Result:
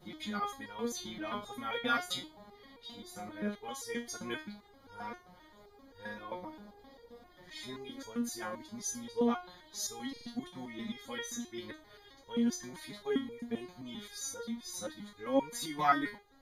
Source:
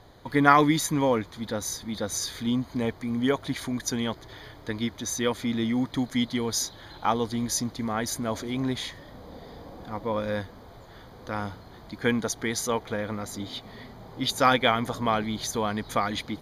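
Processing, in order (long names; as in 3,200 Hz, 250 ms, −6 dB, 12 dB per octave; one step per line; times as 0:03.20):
played backwards from end to start
buffer that repeats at 0:10.07, samples 2,048, times 4
step-sequenced resonator 7.6 Hz 180–470 Hz
level +3.5 dB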